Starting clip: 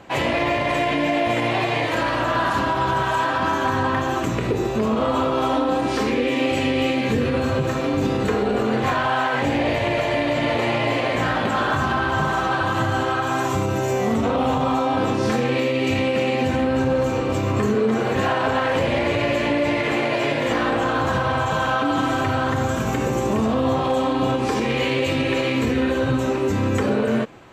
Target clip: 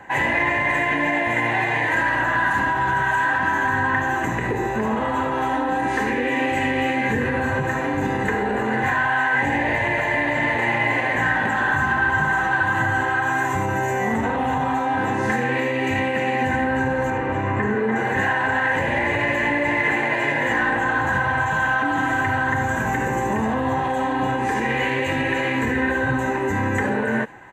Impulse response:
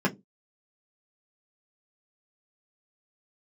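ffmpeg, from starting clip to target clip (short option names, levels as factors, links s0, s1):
-filter_complex "[0:a]asettb=1/sr,asplit=3[s0][s1][s2];[s0]atrim=end=17.104[s3];[s1]atrim=start=17.1:end=17.96,asetpts=PTS-STARTPTS,afade=t=in:d=0.004:c=qsin,afade=t=out:st=0.856:d=0.004:c=qsin,acrossover=split=3600[s4][s5];[s5]acompressor=threshold=0.00158:ratio=4:attack=1:release=60[s6];[s4][s6]amix=inputs=2:normalize=0[s7];[s2]atrim=start=17.956[s8];[s3][s7]acrossfade=d=0.004:c1=hsin:c2=qsin[s9];[s9][s8]acrossfade=d=0.004:c1=qsin:c2=hsin,superequalizer=9b=2.82:11b=3.98:13b=0.501:14b=0.316,acrossover=split=360|1600|3100[s10][s11][s12][s13];[s11]alimiter=limit=0.158:level=0:latency=1[s14];[s13]aecho=1:1:75:0.282[s15];[s10][s14][s12][s15]amix=inputs=4:normalize=0,volume=0.75"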